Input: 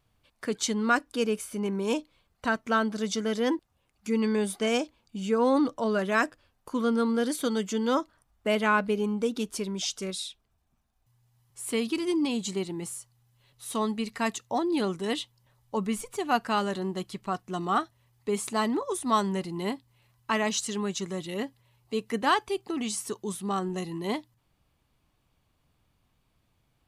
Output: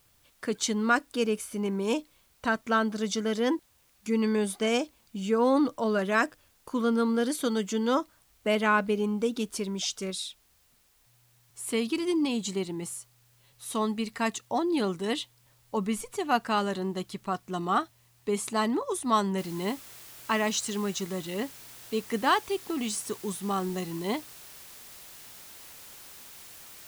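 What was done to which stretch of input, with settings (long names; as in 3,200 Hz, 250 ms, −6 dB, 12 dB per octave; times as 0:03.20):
0:19.38: noise floor change −66 dB −48 dB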